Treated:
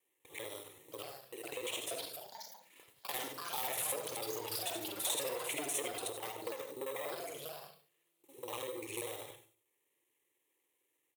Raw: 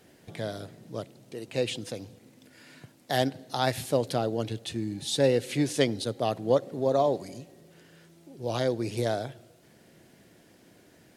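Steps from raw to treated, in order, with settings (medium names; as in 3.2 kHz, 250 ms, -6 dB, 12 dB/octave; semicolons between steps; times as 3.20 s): time reversed locally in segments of 49 ms; gate -50 dBFS, range -20 dB; valve stage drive 24 dB, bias 0.3; bass shelf 140 Hz -11 dB; on a send: delay 99 ms -16.5 dB; on the sum: gated-style reverb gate 110 ms rising, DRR 7.5 dB; in parallel at -8.5 dB: sample-rate reducer 4.4 kHz, jitter 0%; on the sum: compression, threshold -29 dBFS, peak gain reduction 7.5 dB; static phaser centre 1 kHz, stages 8; ever faster or slower copies 734 ms, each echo +5 st, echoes 2, each echo -6 dB; tilt EQ +3.5 dB/octave; endings held to a fixed fall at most 110 dB/s; trim -2.5 dB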